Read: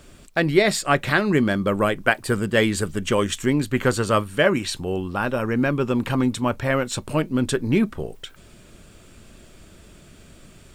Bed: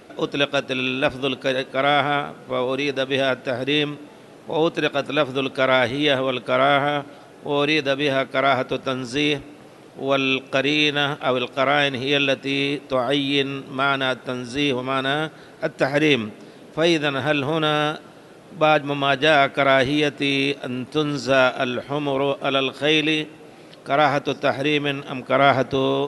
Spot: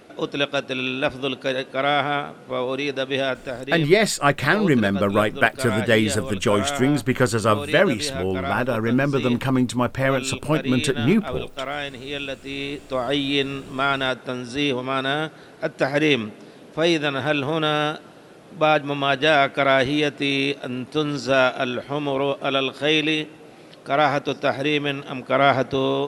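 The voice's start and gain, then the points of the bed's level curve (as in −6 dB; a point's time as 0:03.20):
3.35 s, +1.0 dB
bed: 0:03.19 −2 dB
0:03.91 −10 dB
0:12.32 −10 dB
0:13.20 −1 dB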